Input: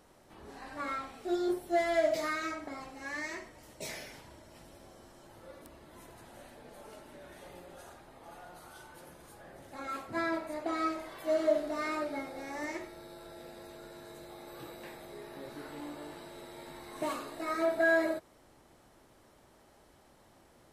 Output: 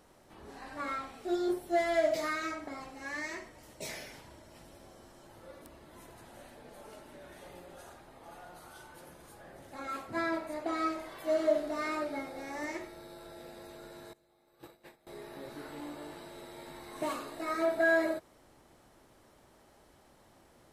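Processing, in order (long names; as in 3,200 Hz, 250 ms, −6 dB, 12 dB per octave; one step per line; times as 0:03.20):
0:14.13–0:15.07: noise gate −44 dBFS, range −21 dB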